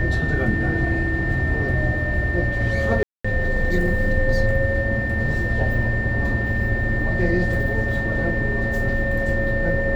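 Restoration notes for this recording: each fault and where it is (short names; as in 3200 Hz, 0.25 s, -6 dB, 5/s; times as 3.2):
tone 1800 Hz -25 dBFS
3.03–3.25 gap 0.215 s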